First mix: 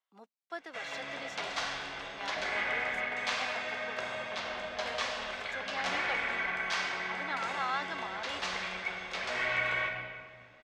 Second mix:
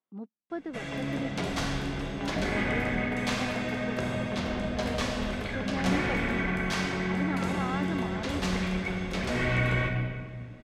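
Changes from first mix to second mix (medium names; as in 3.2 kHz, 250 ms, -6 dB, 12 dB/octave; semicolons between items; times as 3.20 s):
speech: add tape spacing loss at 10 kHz 26 dB; master: remove three-band isolator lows -23 dB, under 590 Hz, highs -19 dB, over 7 kHz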